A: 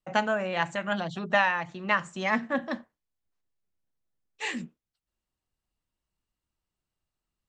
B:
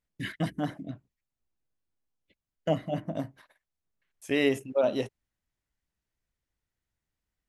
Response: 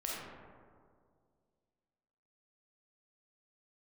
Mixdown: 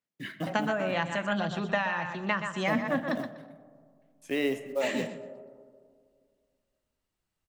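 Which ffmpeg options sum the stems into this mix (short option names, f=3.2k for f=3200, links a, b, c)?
-filter_complex "[0:a]adelay=400,volume=1dB,asplit=3[a][b][c];[b]volume=-22dB[d];[c]volume=-9dB[e];[1:a]highpass=180,highshelf=f=8.5k:g=-9.5,acrusher=bits=6:mode=log:mix=0:aa=0.000001,volume=-4dB,asplit=2[f][g];[g]volume=-11dB[h];[2:a]atrim=start_sample=2205[i];[d][h]amix=inputs=2:normalize=0[j];[j][i]afir=irnorm=-1:irlink=0[k];[e]aecho=0:1:123|246|369|492:1|0.22|0.0484|0.0106[l];[a][f][k][l]amix=inputs=4:normalize=0,acrossover=split=310[m][n];[n]acompressor=threshold=-26dB:ratio=5[o];[m][o]amix=inputs=2:normalize=0"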